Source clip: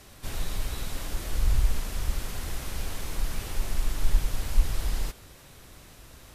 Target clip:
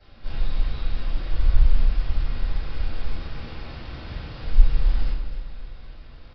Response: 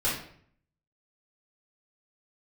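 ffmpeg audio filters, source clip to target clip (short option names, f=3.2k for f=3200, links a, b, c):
-filter_complex "[0:a]asettb=1/sr,asplit=3[a][b][c];[a]atrim=end=3.184[d];[b]atrim=start=3.18:end=4.43,asetpts=PTS-STARTPTS,afade=t=in:d=0.004:c=qsin,afade=t=out:st=1.246:d=0.004:c=qsin,highpass=f=63:w=0.5412,highpass=f=63:w=1.3066[e];[c]atrim=start=4.426[f];[d][e]acrossfade=d=0.004:c1=hsin:c2=qsin[g];[g][f]acrossfade=d=0.004:c1=qsin:c2=hsin,aecho=1:1:258|516|774|1032|1290|1548:0.282|0.152|0.0822|0.0444|0.024|0.0129[h];[1:a]atrim=start_sample=2205[i];[h][i]afir=irnorm=-1:irlink=0,aresample=11025,aresample=44100,volume=-11dB"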